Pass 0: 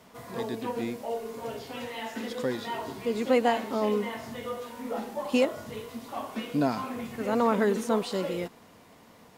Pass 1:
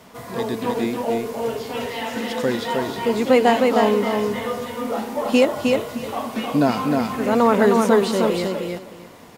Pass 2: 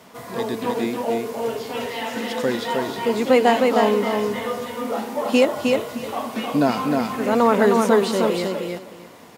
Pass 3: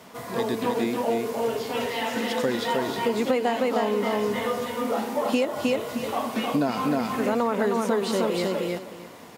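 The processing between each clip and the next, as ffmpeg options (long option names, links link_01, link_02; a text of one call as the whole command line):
ffmpeg -i in.wav -af "aecho=1:1:310|620|930:0.668|0.12|0.0217,volume=8dB" out.wav
ffmpeg -i in.wav -af "highpass=frequency=140:poles=1" out.wav
ffmpeg -i in.wav -af "acompressor=threshold=-20dB:ratio=6" out.wav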